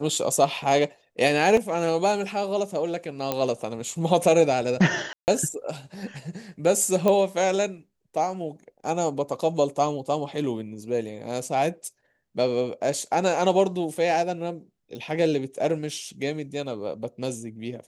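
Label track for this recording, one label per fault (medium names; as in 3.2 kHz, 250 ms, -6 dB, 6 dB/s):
1.570000	1.570000	dropout 3.5 ms
3.320000	3.320000	pop -10 dBFS
5.130000	5.280000	dropout 149 ms
7.080000	7.080000	pop -10 dBFS
14.950000	14.950000	pop -27 dBFS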